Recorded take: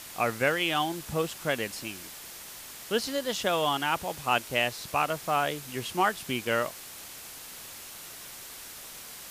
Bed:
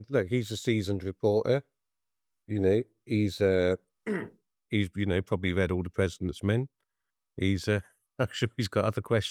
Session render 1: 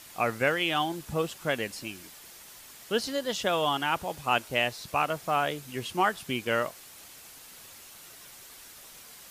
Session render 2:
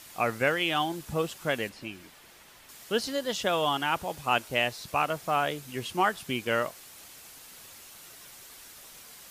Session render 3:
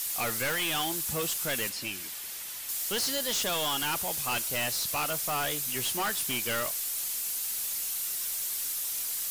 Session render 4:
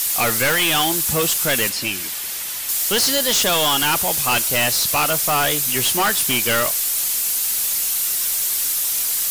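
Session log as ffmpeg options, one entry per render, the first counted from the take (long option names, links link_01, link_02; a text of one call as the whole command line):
ffmpeg -i in.wav -af "afftdn=noise_reduction=6:noise_floor=-44" out.wav
ffmpeg -i in.wav -filter_complex "[0:a]asettb=1/sr,asplit=3[link_01][link_02][link_03];[link_01]atrim=end=1.694[link_04];[link_02]atrim=start=1.69:end=2.69,asetpts=PTS-STARTPTS,afade=type=in:duration=0.004:curve=qsin,afade=type=out:start_time=0.996:duration=0.004:curve=qsin,acrossover=split=3700[link_05][link_06];[link_06]acompressor=threshold=-56dB:ratio=4:attack=1:release=60[link_07];[link_05][link_07]amix=inputs=2:normalize=0[link_08];[link_03]atrim=start=2.686[link_09];[link_04][link_08]acrossfade=duration=0.004:curve1=hsin:curve2=qsin[link_10];[link_10][link_09]acrossfade=duration=0.004:curve1=qsin:curve2=hsin" out.wav
ffmpeg -i in.wav -af "crystalizer=i=7:c=0,aeval=exprs='(tanh(22.4*val(0)+0.05)-tanh(0.05))/22.4':channel_layout=same" out.wav
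ffmpeg -i in.wav -af "volume=12dB" out.wav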